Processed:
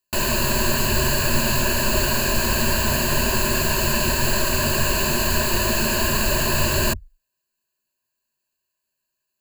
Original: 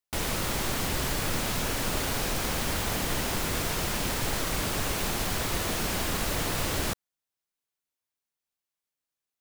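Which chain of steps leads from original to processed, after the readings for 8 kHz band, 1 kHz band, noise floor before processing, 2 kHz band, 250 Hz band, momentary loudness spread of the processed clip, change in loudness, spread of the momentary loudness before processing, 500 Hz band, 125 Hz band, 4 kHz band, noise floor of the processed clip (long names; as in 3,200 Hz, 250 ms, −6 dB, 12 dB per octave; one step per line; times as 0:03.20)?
+8.5 dB, +7.5 dB, below −85 dBFS, +9.5 dB, +8.5 dB, 0 LU, +8.5 dB, 0 LU, +9.5 dB, +8.5 dB, +8.0 dB, −80 dBFS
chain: EQ curve with evenly spaced ripples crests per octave 1.4, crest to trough 16 dB
level +5.5 dB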